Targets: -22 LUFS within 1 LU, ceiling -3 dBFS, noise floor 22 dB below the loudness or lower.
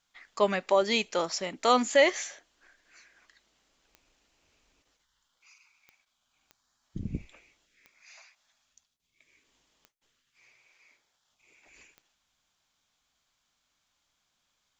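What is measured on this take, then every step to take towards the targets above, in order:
clicks 6; loudness -27.0 LUFS; peak -9.0 dBFS; loudness target -22.0 LUFS
-> de-click; gain +5 dB

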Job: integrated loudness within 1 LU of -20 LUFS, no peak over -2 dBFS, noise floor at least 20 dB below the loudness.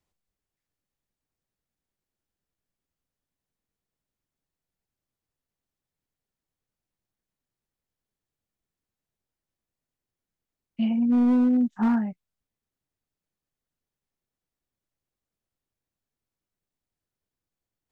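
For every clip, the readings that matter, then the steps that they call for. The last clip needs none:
clipped 0.5%; flat tops at -17.0 dBFS; loudness -23.0 LUFS; peak -17.0 dBFS; loudness target -20.0 LUFS
-> clip repair -17 dBFS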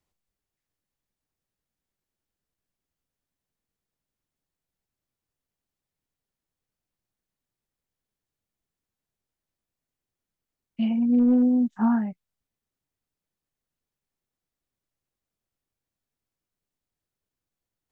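clipped 0.0%; loudness -22.5 LUFS; peak -12.5 dBFS; loudness target -20.0 LUFS
-> gain +2.5 dB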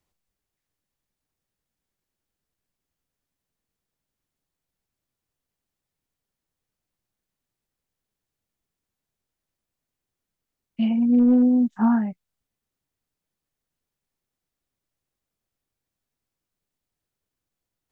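loudness -20.0 LUFS; peak -10.0 dBFS; noise floor -86 dBFS

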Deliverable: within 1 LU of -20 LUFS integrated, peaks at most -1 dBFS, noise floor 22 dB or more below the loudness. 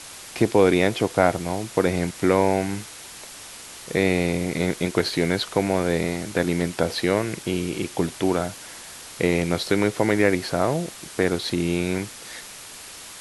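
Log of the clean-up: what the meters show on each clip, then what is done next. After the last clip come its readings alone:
noise floor -41 dBFS; noise floor target -45 dBFS; loudness -23.0 LUFS; peak -2.5 dBFS; loudness target -20.0 LUFS
-> denoiser 6 dB, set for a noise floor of -41 dBFS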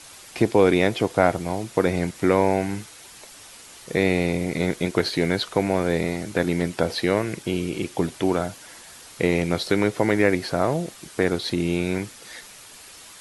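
noise floor -45 dBFS; noise floor target -46 dBFS
-> denoiser 6 dB, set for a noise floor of -45 dBFS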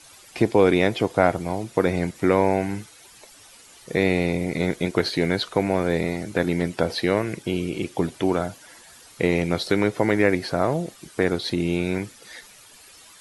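noise floor -49 dBFS; loudness -23.5 LUFS; peak -2.5 dBFS; loudness target -20.0 LUFS
-> gain +3.5 dB; limiter -1 dBFS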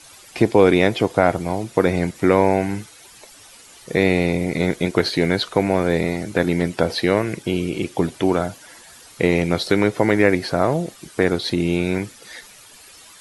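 loudness -20.0 LUFS; peak -1.0 dBFS; noise floor -46 dBFS

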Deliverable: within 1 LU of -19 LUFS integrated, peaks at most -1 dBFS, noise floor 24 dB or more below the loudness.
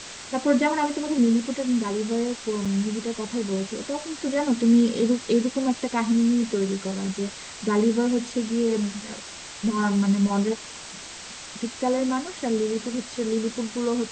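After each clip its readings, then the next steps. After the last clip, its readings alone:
dropouts 1; longest dropout 5.6 ms; noise floor -40 dBFS; noise floor target -49 dBFS; loudness -24.5 LUFS; peak -10.0 dBFS; loudness target -19.0 LUFS
-> interpolate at 2.65, 5.6 ms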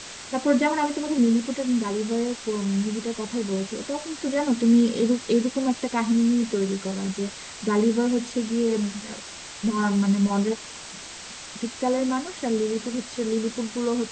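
dropouts 0; noise floor -40 dBFS; noise floor target -49 dBFS
-> noise print and reduce 9 dB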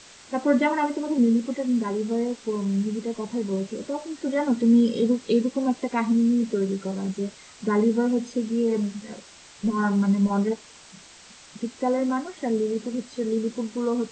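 noise floor -49 dBFS; loudness -25.0 LUFS; peak -10.0 dBFS; loudness target -19.0 LUFS
-> gain +6 dB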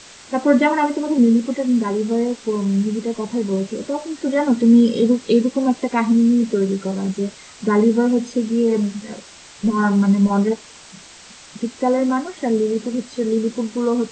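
loudness -19.0 LUFS; peak -4.0 dBFS; noise floor -43 dBFS

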